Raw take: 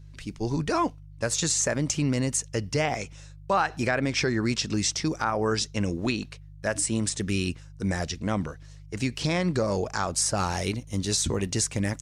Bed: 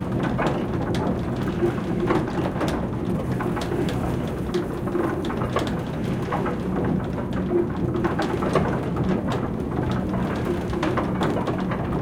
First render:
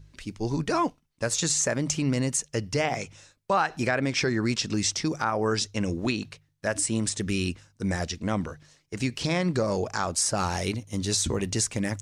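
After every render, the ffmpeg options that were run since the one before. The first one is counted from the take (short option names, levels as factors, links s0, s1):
-af "bandreject=f=50:t=h:w=4,bandreject=f=100:t=h:w=4,bandreject=f=150:t=h:w=4"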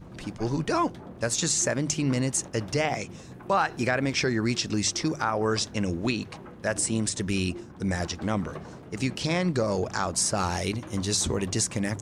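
-filter_complex "[1:a]volume=0.106[s0];[0:a][s0]amix=inputs=2:normalize=0"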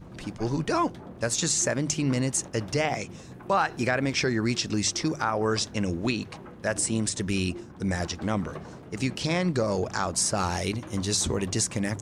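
-af anull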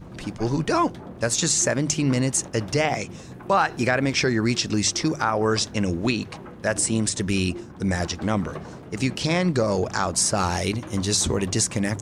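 -af "volume=1.58"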